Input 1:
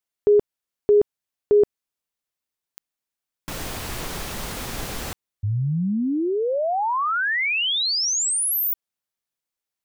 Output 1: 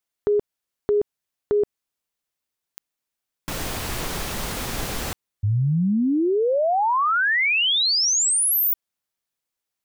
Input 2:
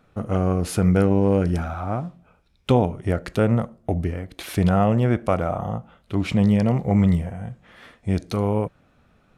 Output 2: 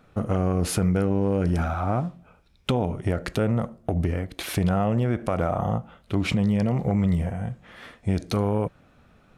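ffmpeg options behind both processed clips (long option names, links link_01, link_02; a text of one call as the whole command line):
ffmpeg -i in.wav -af "acompressor=threshold=-19dB:ratio=12:attack=1.4:release=220:knee=1:detection=peak,volume=2.5dB" out.wav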